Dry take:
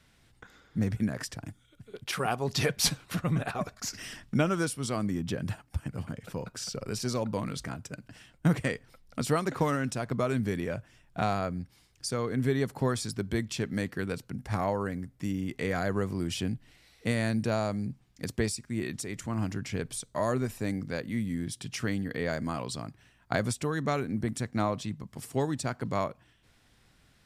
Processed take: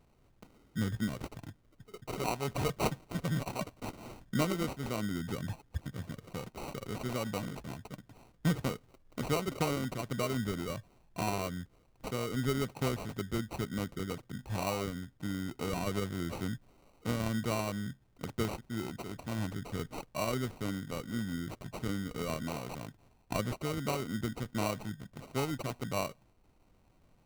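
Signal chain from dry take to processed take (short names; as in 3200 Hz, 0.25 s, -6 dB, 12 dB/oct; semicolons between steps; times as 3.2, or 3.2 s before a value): added noise brown -64 dBFS; sample-rate reducer 1700 Hz, jitter 0%; gain -4.5 dB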